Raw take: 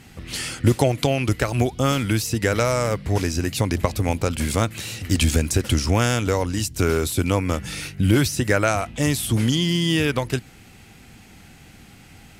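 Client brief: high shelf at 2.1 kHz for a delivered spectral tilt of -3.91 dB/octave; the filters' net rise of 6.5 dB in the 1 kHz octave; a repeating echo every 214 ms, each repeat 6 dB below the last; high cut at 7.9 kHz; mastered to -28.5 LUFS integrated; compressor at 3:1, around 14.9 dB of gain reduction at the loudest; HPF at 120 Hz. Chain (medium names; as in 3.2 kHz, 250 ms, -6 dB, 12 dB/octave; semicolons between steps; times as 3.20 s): high-pass 120 Hz; low-pass 7.9 kHz; peaking EQ 1 kHz +8 dB; treble shelf 2.1 kHz +3.5 dB; compression 3:1, threshold -33 dBFS; feedback delay 214 ms, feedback 50%, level -6 dB; trim +3.5 dB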